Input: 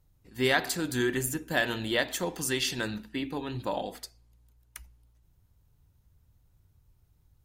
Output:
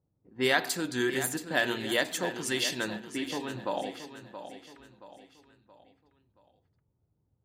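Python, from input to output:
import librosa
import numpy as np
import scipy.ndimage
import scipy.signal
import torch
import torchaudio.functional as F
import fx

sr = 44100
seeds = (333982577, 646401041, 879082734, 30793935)

p1 = scipy.signal.sosfilt(scipy.signal.bessel(2, 190.0, 'highpass', norm='mag', fs=sr, output='sos'), x)
p2 = fx.env_lowpass(p1, sr, base_hz=610.0, full_db=-27.0)
y = p2 + fx.echo_feedback(p2, sr, ms=675, feedback_pct=42, wet_db=-11, dry=0)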